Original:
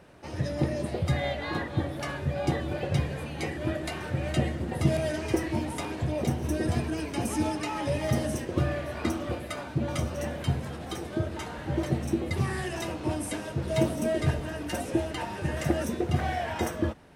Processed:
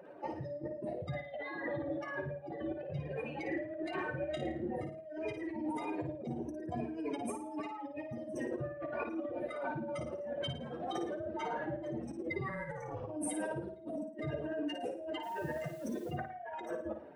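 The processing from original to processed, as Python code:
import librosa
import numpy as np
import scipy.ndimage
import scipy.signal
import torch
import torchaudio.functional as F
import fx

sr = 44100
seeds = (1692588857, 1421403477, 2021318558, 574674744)

y = fx.spec_expand(x, sr, power=2.2)
y = scipy.signal.sosfilt(scipy.signal.butter(2, 460.0, 'highpass', fs=sr, output='sos'), y)
y = fx.spec_repair(y, sr, seeds[0], start_s=12.39, length_s=0.69, low_hz=2300.0, high_hz=6000.0, source='both')
y = fx.over_compress(y, sr, threshold_db=-43.0, ratio=-1.0)
y = fx.doubler(y, sr, ms=28.0, db=-8.0, at=(4.17, 4.83))
y = fx.ring_mod(y, sr, carrier_hz=200.0, at=(12.48, 13.07), fade=0.02)
y = fx.dmg_noise_colour(y, sr, seeds[1], colour='white', level_db=-67.0, at=(15.22, 16.1), fade=0.02)
y = fx.room_flutter(y, sr, wall_m=9.5, rt60_s=0.44)
y = y * librosa.db_to_amplitude(2.0)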